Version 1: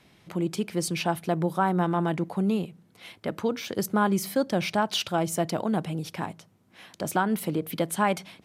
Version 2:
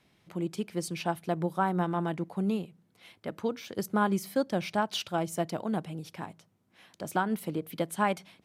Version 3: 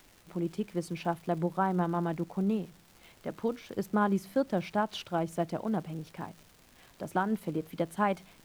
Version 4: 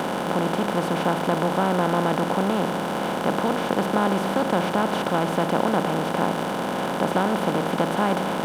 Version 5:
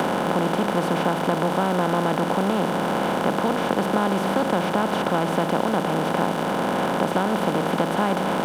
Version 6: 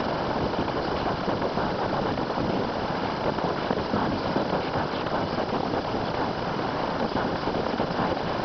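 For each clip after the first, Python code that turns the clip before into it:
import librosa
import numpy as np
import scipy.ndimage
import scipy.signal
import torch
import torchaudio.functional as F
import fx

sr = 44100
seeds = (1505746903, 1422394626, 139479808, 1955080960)

y1 = fx.upward_expand(x, sr, threshold_db=-32.0, expansion=1.5)
y1 = y1 * 10.0 ** (-2.5 / 20.0)
y2 = fx.high_shelf(y1, sr, hz=2700.0, db=-10.5)
y2 = fx.dmg_crackle(y2, sr, seeds[0], per_s=190.0, level_db=-44.0)
y2 = fx.dmg_noise_colour(y2, sr, seeds[1], colour='pink', level_db=-62.0)
y3 = fx.bin_compress(y2, sr, power=0.2)
y4 = fx.band_squash(y3, sr, depth_pct=70)
y5 = fx.freq_compress(y4, sr, knee_hz=3900.0, ratio=4.0)
y5 = fx.hum_notches(y5, sr, base_hz=60, count=3)
y5 = fx.whisperise(y5, sr, seeds[2])
y5 = y5 * 10.0 ** (-4.5 / 20.0)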